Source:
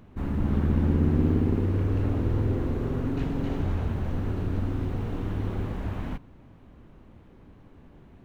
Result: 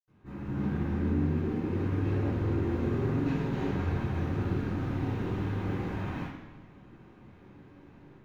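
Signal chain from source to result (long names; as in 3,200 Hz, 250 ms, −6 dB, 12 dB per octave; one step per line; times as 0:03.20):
automatic gain control gain up to 9.5 dB
brickwall limiter −9.5 dBFS, peak gain reduction 6.5 dB
convolution reverb, pre-delay 76 ms, DRR −60 dB
level −3 dB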